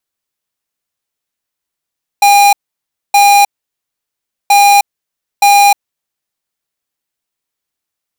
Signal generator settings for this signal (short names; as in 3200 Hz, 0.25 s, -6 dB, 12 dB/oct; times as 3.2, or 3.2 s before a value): beep pattern square 809 Hz, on 0.31 s, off 0.61 s, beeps 2, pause 1.05 s, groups 2, -6 dBFS